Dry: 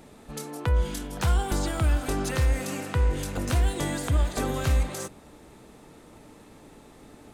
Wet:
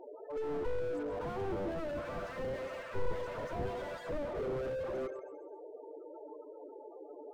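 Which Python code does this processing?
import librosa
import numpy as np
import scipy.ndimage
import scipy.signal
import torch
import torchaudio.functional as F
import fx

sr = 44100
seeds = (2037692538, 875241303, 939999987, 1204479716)

y = fx.spec_clip(x, sr, under_db=23, at=(1.94, 4.13), fade=0.02)
y = scipy.signal.sosfilt(scipy.signal.butter(4, 390.0, 'highpass', fs=sr, output='sos'), y)
y = fx.notch(y, sr, hz=800.0, q=12.0)
y = fx.spec_topn(y, sr, count=8)
y = 10.0 ** (-33.5 / 20.0) * np.tanh(y / 10.0 ** (-33.5 / 20.0))
y = fx.spacing_loss(y, sr, db_at_10k=29)
y = fx.echo_feedback(y, sr, ms=134, feedback_pct=44, wet_db=-12.5)
y = fx.slew_limit(y, sr, full_power_hz=2.4)
y = F.gain(torch.from_numpy(y), 11.0).numpy()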